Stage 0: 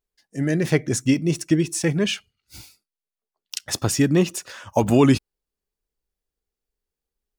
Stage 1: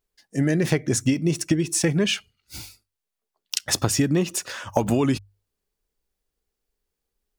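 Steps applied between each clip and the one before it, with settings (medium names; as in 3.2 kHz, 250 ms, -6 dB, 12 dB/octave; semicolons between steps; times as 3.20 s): compression 10:1, threshold -22 dBFS, peak gain reduction 12 dB; hum notches 50/100 Hz; trim +5 dB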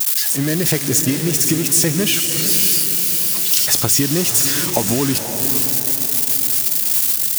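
zero-crossing glitches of -12 dBFS; echo that smears into a reverb 521 ms, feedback 51%, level -7.5 dB; trim +1.5 dB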